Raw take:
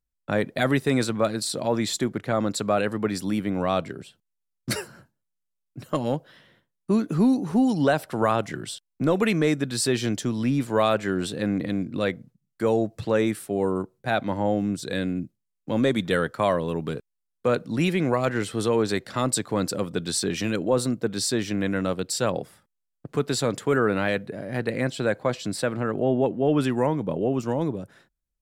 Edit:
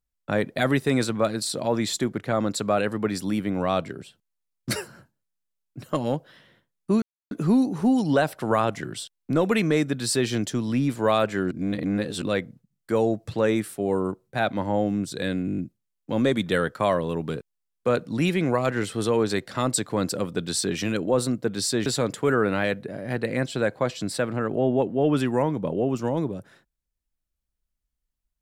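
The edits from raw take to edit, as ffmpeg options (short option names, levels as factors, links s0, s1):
-filter_complex "[0:a]asplit=11[s0][s1][s2][s3][s4][s5][s6][s7][s8][s9][s10];[s0]atrim=end=7.02,asetpts=PTS-STARTPTS,afade=t=out:st=7.016:d=0.004:c=hsin,apad=pad_dur=0.29[s11];[s1]atrim=start=7.02:end=11.222,asetpts=PTS-STARTPTS,afade=t=in:d=0.004:c=hsin[s12];[s2]atrim=start=11.218:end=11.932,asetpts=PTS-STARTPTS,areverse[s13];[s3]atrim=start=11.928:end=15.192[s14];[s4]atrim=start=15.168:end=15.192[s15];[s5]atrim=start=15.168:end=15.192[s16];[s6]atrim=start=15.168:end=15.192[s17];[s7]atrim=start=15.168:end=15.192[s18];[s8]atrim=start=15.168:end=15.192[s19];[s9]atrim=start=15.168:end=21.452[s20];[s10]atrim=start=23.298[s21];[s11][s12]concat=n=2:v=0:a=1[s22];[s22][s13]acrossfade=d=0.004:c1=hsin:c2=hsin[s23];[s23][s14]acrossfade=d=0.004:c1=hsin:c2=hsin[s24];[s24][s15]acrossfade=d=0.004:c1=hsin:c2=hsin[s25];[s25][s16]acrossfade=d=0.004:c1=hsin:c2=hsin[s26];[s26][s17]acrossfade=d=0.004:c1=hsin:c2=hsin[s27];[s27][s18]acrossfade=d=0.004:c1=hsin:c2=hsin[s28];[s28][s19]acrossfade=d=0.004:c1=hsin:c2=hsin[s29];[s29][s20]acrossfade=d=0.004:c1=hsin:c2=hsin[s30];[s30][s21]acrossfade=d=0.004:c1=hsin:c2=hsin"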